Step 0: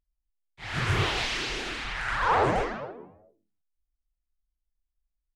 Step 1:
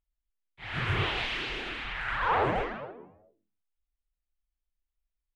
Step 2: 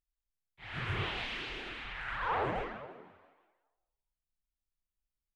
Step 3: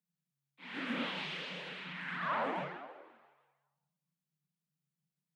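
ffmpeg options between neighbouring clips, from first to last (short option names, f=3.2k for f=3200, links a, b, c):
-af "highshelf=f=4.2k:t=q:w=1.5:g=-9.5,volume=-3.5dB"
-filter_complex "[0:a]asplit=6[a][b][c][d][e][f];[b]adelay=165,afreqshift=63,volume=-19dB[g];[c]adelay=330,afreqshift=126,volume=-23.6dB[h];[d]adelay=495,afreqshift=189,volume=-28.2dB[i];[e]adelay=660,afreqshift=252,volume=-32.7dB[j];[f]adelay=825,afreqshift=315,volume=-37.3dB[k];[a][g][h][i][j][k]amix=inputs=6:normalize=0,volume=-6.5dB"
-af "afreqshift=140,volume=-2dB"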